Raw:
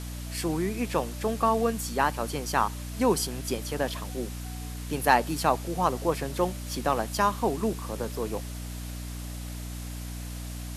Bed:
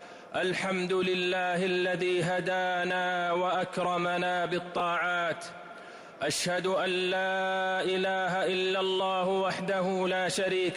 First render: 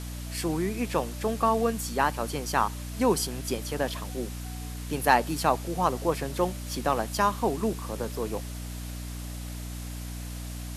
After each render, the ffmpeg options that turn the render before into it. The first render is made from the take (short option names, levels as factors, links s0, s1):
-af anull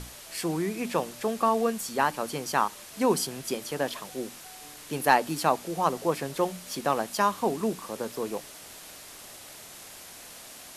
-af "bandreject=f=60:t=h:w=6,bandreject=f=120:t=h:w=6,bandreject=f=180:t=h:w=6,bandreject=f=240:t=h:w=6,bandreject=f=300:t=h:w=6"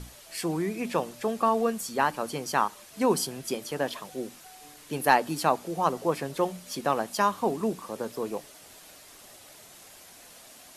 -af "afftdn=nr=6:nf=-46"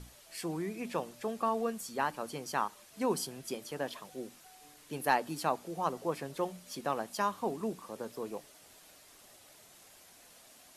-af "volume=0.422"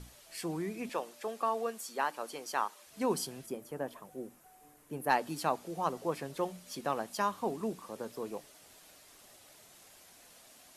-filter_complex "[0:a]asettb=1/sr,asplit=3[s0][s1][s2];[s0]atrim=end=0.894[s3];[s1]atrim=start=0.89:end=2.87,asetpts=PTS-STARTPTS,afade=t=in:d=0.004:c=qsin,afade=t=out:st=1.976:d=0.004:c=qsin,highpass=360[s4];[s2]atrim=start=2.866[s5];[s3][s4]acrossfade=d=0.004:c1=hsin:c2=qsin[s6];[s6][s5]acrossfade=d=0.004:c1=qsin:c2=hsin,asplit=3[s7][s8][s9];[s7]afade=t=out:st=3.45:d=0.02[s10];[s8]equalizer=f=4100:t=o:w=2:g=-14.5,afade=t=in:st=3.45:d=0.02,afade=t=out:st=5.09:d=0.02[s11];[s9]afade=t=in:st=5.09:d=0.02[s12];[s10][s11][s12]amix=inputs=3:normalize=0"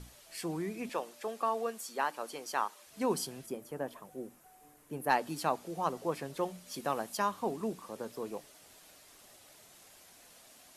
-filter_complex "[0:a]asettb=1/sr,asplit=3[s0][s1][s2];[s0]atrim=end=6.744[s3];[s1]atrim=start=6.74:end=7.17,asetpts=PTS-STARTPTS,afade=t=in:d=0.004:c=qsin,afade=t=out:st=0.426:d=0.004:c=qsin,highshelf=f=8800:g=7[s4];[s2]atrim=start=7.166[s5];[s3][s4]acrossfade=d=0.004:c1=hsin:c2=qsin[s6];[s6][s5]acrossfade=d=0.004:c1=qsin:c2=hsin"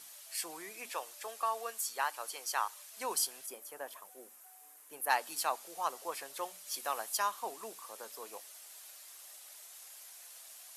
-af "highpass=780,highshelf=f=6200:g=10.5"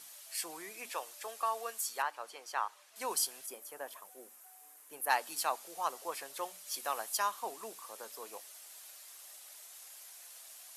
-filter_complex "[0:a]asettb=1/sr,asplit=3[s0][s1][s2];[s0]atrim=end=2.024[s3];[s1]atrim=start=2.02:end=2.96,asetpts=PTS-STARTPTS,afade=t=in:d=0.004:c=qsin,afade=t=out:st=0.936:d=0.004:c=qsin,aemphasis=mode=reproduction:type=75kf[s4];[s2]atrim=start=2.956[s5];[s3][s4]acrossfade=d=0.004:c1=hsin:c2=qsin[s6];[s6][s5]acrossfade=d=0.004:c1=qsin:c2=hsin"